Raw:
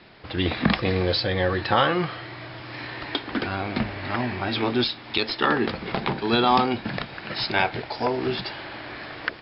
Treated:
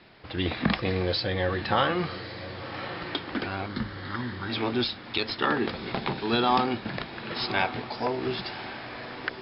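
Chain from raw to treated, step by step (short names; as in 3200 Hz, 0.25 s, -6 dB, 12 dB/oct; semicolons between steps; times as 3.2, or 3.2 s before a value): 3.66–4.5 fixed phaser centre 2500 Hz, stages 6; diffused feedback echo 1.087 s, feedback 42%, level -13 dB; gain -4 dB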